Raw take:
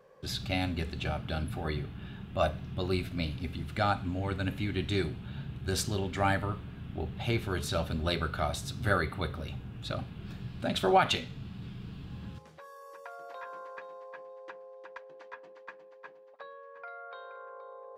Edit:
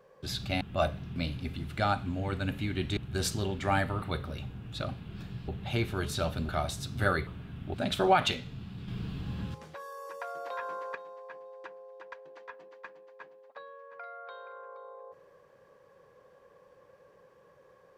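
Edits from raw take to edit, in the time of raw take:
0:00.61–0:02.22: remove
0:02.77–0:03.15: remove
0:04.96–0:05.50: remove
0:06.55–0:07.02: swap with 0:09.12–0:10.58
0:08.03–0:08.34: remove
0:11.72–0:13.79: clip gain +6 dB

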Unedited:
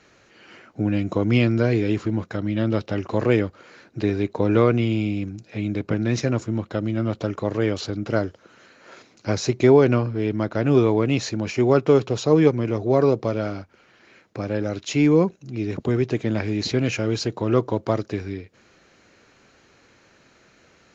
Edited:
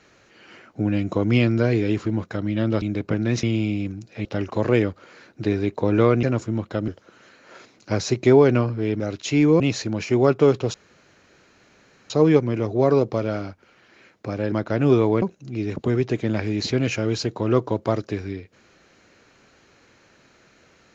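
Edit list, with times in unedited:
0:02.82–0:04.80: swap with 0:05.62–0:06.23
0:06.88–0:08.25: remove
0:10.37–0:11.07: swap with 0:14.63–0:15.23
0:12.21: splice in room tone 1.36 s

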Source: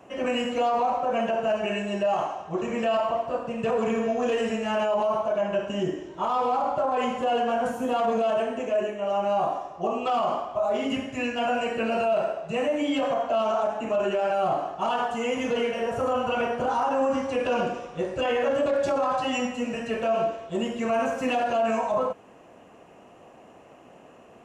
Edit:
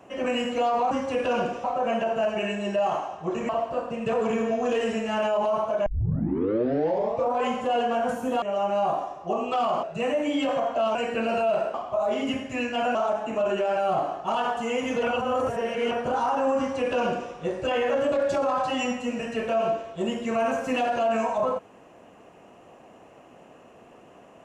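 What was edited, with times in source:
0:02.76–0:03.06: remove
0:05.43: tape start 1.57 s
0:07.99–0:08.96: remove
0:10.37–0:11.58: swap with 0:12.37–0:13.49
0:15.57–0:16.45: reverse
0:17.12–0:17.85: duplicate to 0:00.91

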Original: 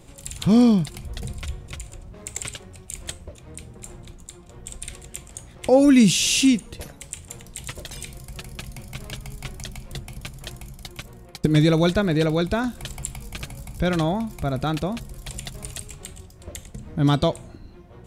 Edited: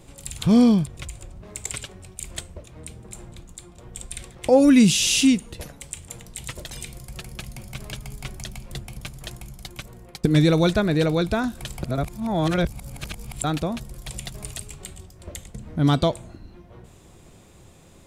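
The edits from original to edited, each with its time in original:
0:00.87–0:01.58: remove
0:05.02–0:05.51: remove
0:13.03–0:14.64: reverse

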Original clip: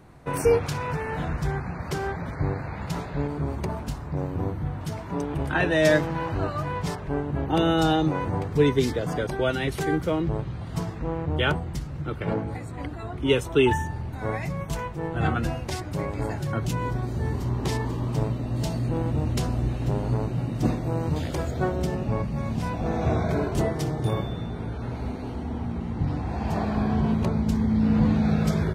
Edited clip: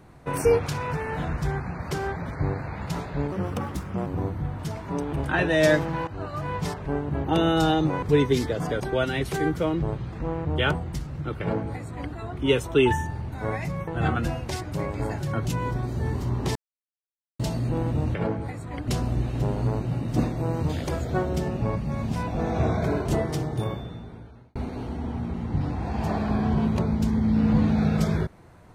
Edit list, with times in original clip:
0:03.32–0:04.28: play speed 129%
0:06.29–0:06.74: fade in, from −12.5 dB
0:08.24–0:08.49: remove
0:10.59–0:10.93: remove
0:12.21–0:12.94: duplicate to 0:19.34
0:14.68–0:15.07: remove
0:17.75–0:18.59: silence
0:23.78–0:25.02: fade out

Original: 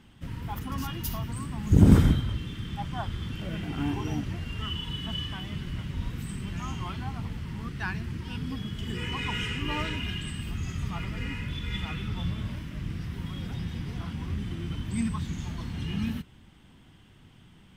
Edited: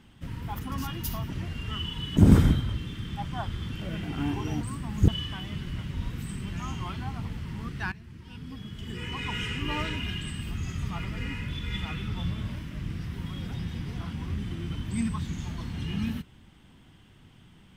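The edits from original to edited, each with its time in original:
0:01.30–0:01.77: swap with 0:04.21–0:05.08
0:07.92–0:09.62: fade in, from −15 dB

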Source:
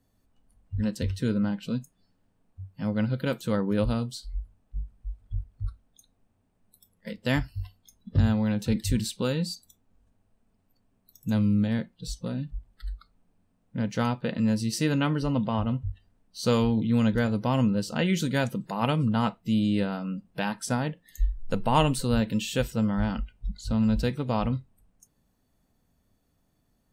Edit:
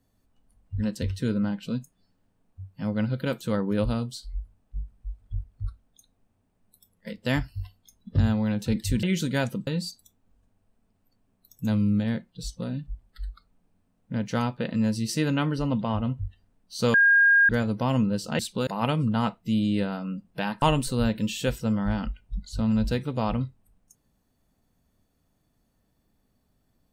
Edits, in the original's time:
0:09.03–0:09.31: swap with 0:18.03–0:18.67
0:16.58–0:17.13: beep over 1,620 Hz −14.5 dBFS
0:20.62–0:21.74: remove

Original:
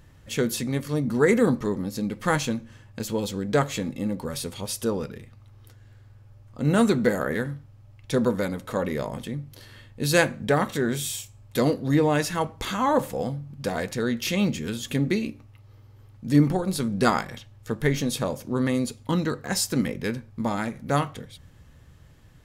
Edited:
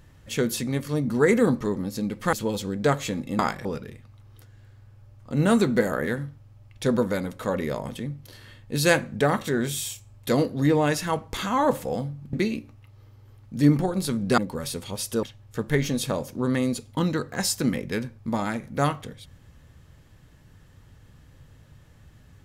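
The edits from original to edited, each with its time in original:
0:02.33–0:03.02: remove
0:04.08–0:04.93: swap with 0:17.09–0:17.35
0:13.61–0:15.04: remove

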